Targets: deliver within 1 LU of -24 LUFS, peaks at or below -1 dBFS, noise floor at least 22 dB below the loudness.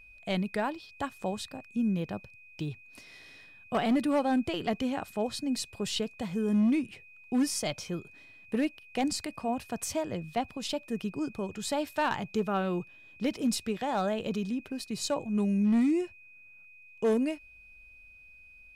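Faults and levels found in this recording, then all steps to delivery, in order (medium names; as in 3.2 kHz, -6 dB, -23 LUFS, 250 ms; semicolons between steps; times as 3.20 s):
clipped samples 0.7%; clipping level -21.0 dBFS; steady tone 2.5 kHz; tone level -52 dBFS; loudness -31.5 LUFS; peak level -21.0 dBFS; loudness target -24.0 LUFS
-> clip repair -21 dBFS; band-stop 2.5 kHz, Q 30; trim +7.5 dB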